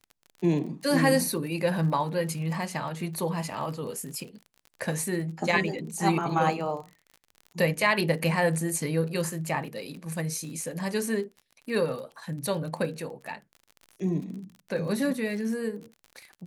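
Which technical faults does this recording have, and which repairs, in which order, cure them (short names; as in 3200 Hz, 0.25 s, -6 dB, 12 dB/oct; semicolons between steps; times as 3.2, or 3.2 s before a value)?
crackle 40/s -37 dBFS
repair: de-click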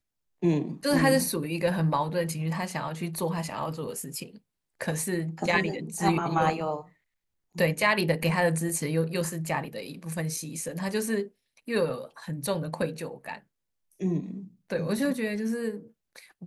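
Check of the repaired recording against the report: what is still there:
none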